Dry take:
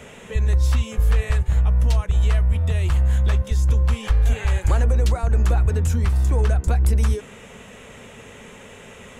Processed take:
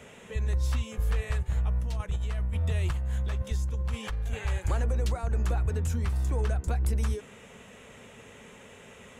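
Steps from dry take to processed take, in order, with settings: HPF 49 Hz 6 dB/oct; 1.79–4.39 negative-ratio compressor -20 dBFS, ratio -0.5; gain -7.5 dB

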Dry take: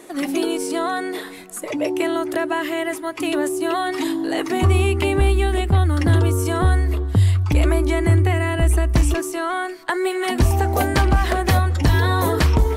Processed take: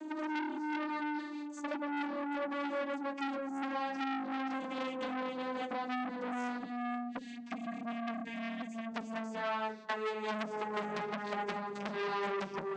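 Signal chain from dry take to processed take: vocoder on a gliding note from D#4, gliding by -8 st; compressor 16:1, threshold -25 dBFS, peak gain reduction 15 dB; flange 0.65 Hz, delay 9.5 ms, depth 7.6 ms, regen -18%; spectral gain 6.58–8.86, 350–1600 Hz -17 dB; on a send at -17.5 dB: reverb RT60 0.65 s, pre-delay 5 ms; on the sum: core saturation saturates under 2200 Hz

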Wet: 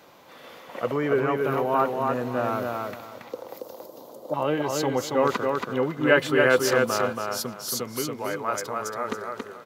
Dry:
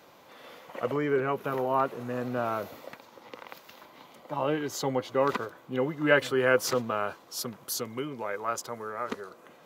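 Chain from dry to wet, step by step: 3.32–4.34 EQ curve 200 Hz 0 dB, 520 Hz +10 dB, 2200 Hz -21 dB, 4600 Hz -2 dB, 12000 Hz +5 dB; feedback echo 0.278 s, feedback 24%, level -3.5 dB; gain +3 dB

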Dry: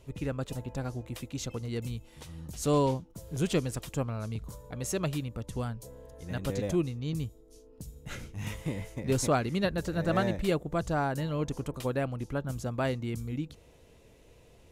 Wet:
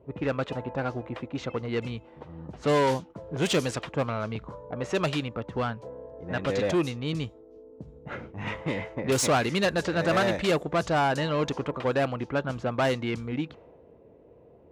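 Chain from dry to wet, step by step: low-pass opened by the level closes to 450 Hz, open at -24 dBFS; overdrive pedal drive 20 dB, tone 6800 Hz, clips at -15.5 dBFS; HPF 53 Hz

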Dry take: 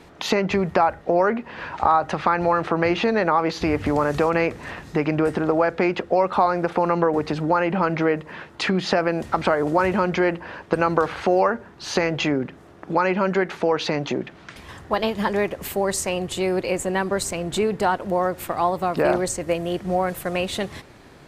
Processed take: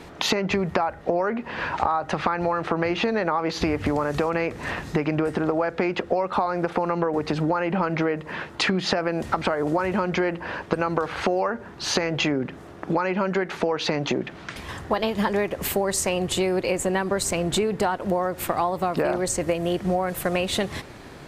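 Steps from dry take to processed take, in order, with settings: compressor 6:1, threshold -25 dBFS, peak gain reduction 11.5 dB; gain +5 dB

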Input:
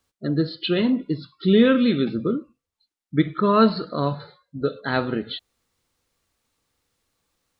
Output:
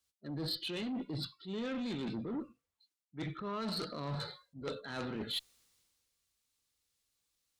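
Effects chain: high shelf 2100 Hz +7 dB; transient shaper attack -8 dB, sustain +2 dB; reverse; compressor 8:1, threshold -31 dBFS, peak gain reduction 18.5 dB; reverse; added harmonics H 3 -9 dB, 5 -13 dB, 6 -33 dB, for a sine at -20.5 dBFS; three-band expander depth 40%; gain -2.5 dB

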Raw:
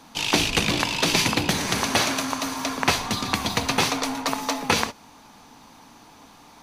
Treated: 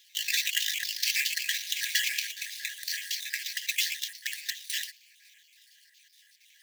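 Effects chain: random spectral dropouts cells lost 59%; sample-rate reducer 10000 Hz, jitter 20%; brick-wall FIR high-pass 1600 Hz

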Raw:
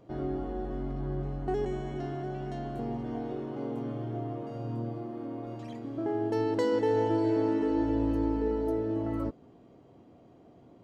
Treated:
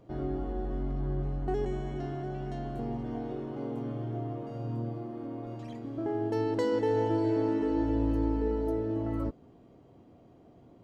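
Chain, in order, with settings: low shelf 89 Hz +7.5 dB; gain -1.5 dB

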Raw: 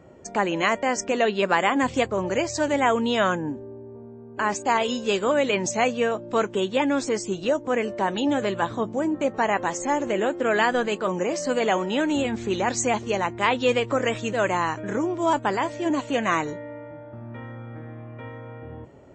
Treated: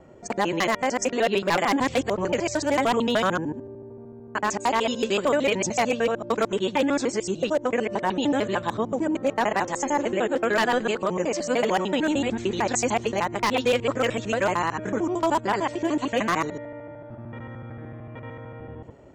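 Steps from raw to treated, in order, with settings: local time reversal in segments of 75 ms; wavefolder -14 dBFS

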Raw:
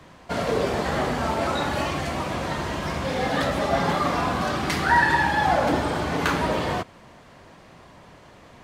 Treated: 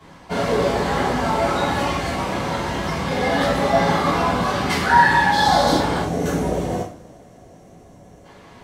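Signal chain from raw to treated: 5.32–5.77 resonant high shelf 3200 Hz +7 dB, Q 3; 6.01–8.25 spectral gain 790–5300 Hz -12 dB; two-slope reverb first 0.39 s, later 3 s, from -28 dB, DRR -9 dB; gain -5.5 dB

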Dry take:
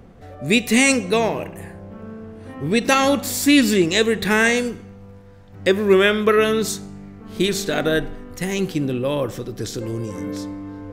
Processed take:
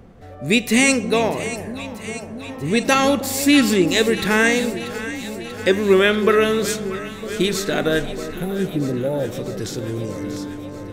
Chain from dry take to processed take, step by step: spectral repair 8.34–9.29, 920–10000 Hz before; echo with dull and thin repeats by turns 0.319 s, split 810 Hz, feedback 83%, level -11.5 dB

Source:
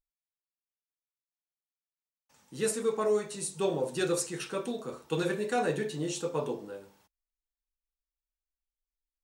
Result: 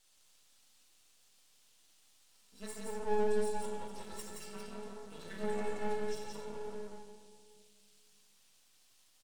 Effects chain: in parallel at +1 dB: limiter -25.5 dBFS, peak gain reduction 7.5 dB; on the sum: metallic resonator 200 Hz, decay 0.55 s, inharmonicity 0.03; band noise 2700–9900 Hz -66 dBFS; flange 1.1 Hz, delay 9.1 ms, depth 6.1 ms, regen +35%; shoebox room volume 3600 m³, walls mixed, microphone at 2.1 m; half-wave rectifier; on a send: echo 0.173 s -3 dB; on the sum: gain +2 dB

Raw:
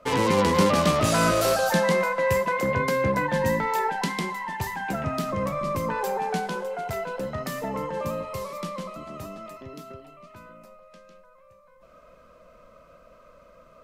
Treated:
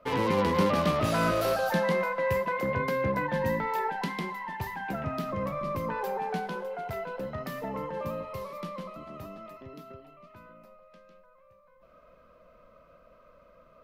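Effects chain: bell 7700 Hz -11.5 dB 1.1 oct; gain -4.5 dB

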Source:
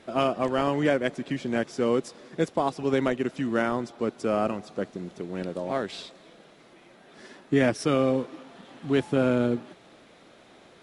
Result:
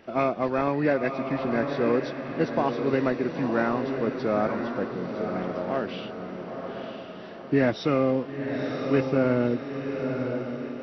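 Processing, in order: nonlinear frequency compression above 1700 Hz 1.5:1; diffused feedback echo 0.984 s, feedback 47%, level -5.5 dB

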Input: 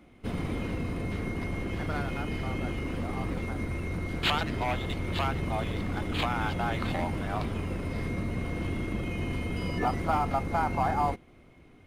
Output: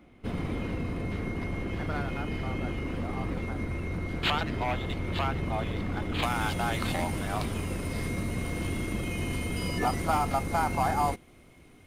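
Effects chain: bell 11000 Hz -4 dB 1.9 oct, from 6.23 s +13.5 dB

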